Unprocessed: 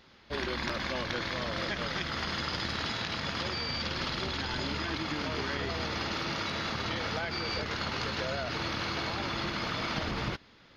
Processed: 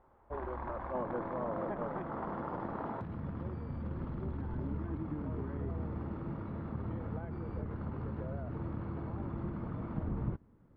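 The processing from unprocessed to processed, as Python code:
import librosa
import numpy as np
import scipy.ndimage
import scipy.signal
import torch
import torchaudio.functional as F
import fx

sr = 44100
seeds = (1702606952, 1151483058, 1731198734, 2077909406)

y = scipy.signal.sosfilt(scipy.signal.cheby1(3, 1.0, 960.0, 'lowpass', fs=sr, output='sos'), x)
y = fx.peak_eq(y, sr, hz=fx.steps((0.0, 190.0), (0.94, 65.0), (3.01, 790.0)), db=-14.0, octaves=2.0)
y = y * librosa.db_to_amplitude(2.5)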